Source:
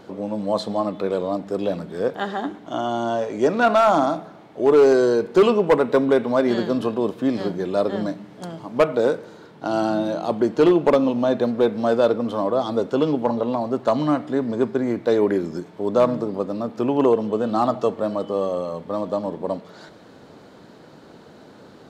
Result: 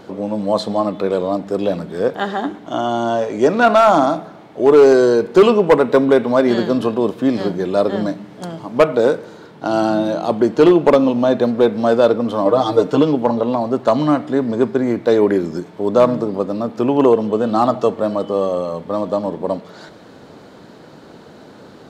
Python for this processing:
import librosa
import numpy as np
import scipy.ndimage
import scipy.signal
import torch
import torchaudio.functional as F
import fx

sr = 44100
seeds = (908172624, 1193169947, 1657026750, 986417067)

y = fx.comb(x, sr, ms=6.6, depth=0.99, at=(12.45, 13.02))
y = y * 10.0 ** (5.0 / 20.0)